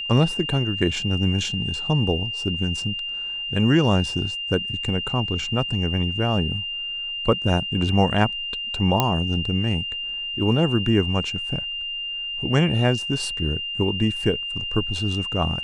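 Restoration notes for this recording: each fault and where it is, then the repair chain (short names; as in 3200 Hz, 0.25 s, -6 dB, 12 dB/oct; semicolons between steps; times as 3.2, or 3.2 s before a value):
tone 2800 Hz -27 dBFS
9 pop -4 dBFS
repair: de-click; notch 2800 Hz, Q 30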